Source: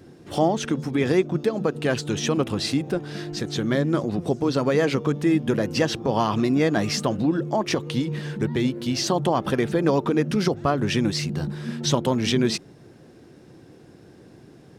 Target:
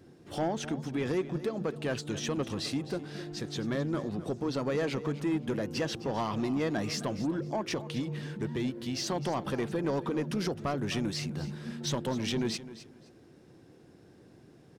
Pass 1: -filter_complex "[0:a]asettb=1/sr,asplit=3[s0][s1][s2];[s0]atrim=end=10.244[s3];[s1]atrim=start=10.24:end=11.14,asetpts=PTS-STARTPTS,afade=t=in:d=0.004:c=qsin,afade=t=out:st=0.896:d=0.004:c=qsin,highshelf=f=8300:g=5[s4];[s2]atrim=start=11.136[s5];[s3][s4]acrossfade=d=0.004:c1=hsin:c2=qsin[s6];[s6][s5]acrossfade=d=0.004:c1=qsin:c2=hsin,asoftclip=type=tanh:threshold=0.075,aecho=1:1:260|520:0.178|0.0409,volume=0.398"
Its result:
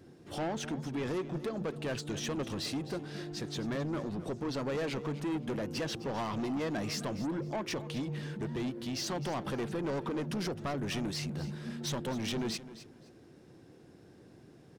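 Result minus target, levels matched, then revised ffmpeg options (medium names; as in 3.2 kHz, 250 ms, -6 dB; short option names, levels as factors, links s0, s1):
saturation: distortion +7 dB
-filter_complex "[0:a]asettb=1/sr,asplit=3[s0][s1][s2];[s0]atrim=end=10.244[s3];[s1]atrim=start=10.24:end=11.14,asetpts=PTS-STARTPTS,afade=t=in:d=0.004:c=qsin,afade=t=out:st=0.896:d=0.004:c=qsin,highshelf=f=8300:g=5[s4];[s2]atrim=start=11.136[s5];[s3][s4]acrossfade=d=0.004:c1=hsin:c2=qsin[s6];[s6][s5]acrossfade=d=0.004:c1=qsin:c2=hsin,asoftclip=type=tanh:threshold=0.178,aecho=1:1:260|520:0.178|0.0409,volume=0.398"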